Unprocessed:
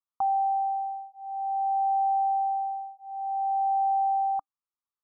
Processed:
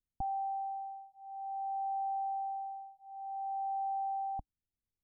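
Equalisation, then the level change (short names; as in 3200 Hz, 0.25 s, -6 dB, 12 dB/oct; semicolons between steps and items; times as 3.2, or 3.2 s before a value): Gaussian blur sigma 14 samples; air absorption 490 m; tilt -5 dB/oct; 0.0 dB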